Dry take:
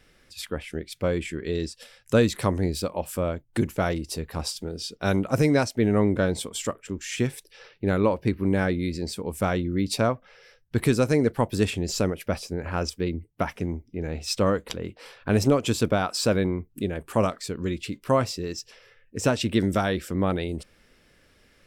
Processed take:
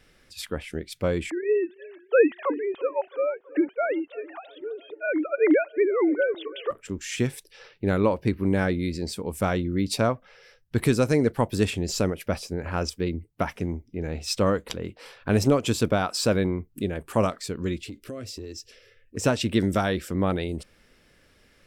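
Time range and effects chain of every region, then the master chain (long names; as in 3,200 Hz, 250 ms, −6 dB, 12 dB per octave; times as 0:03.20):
0:01.30–0:06.71: three sine waves on the formant tracks + feedback echo with a low-pass in the loop 330 ms, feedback 63%, low-pass 2,300 Hz, level −21.5 dB
0:17.83–0:19.17: parametric band 95 Hz +9 dB 2.9 octaves + phaser with its sweep stopped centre 370 Hz, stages 4 + downward compressor 5 to 1, threshold −34 dBFS
whole clip: no processing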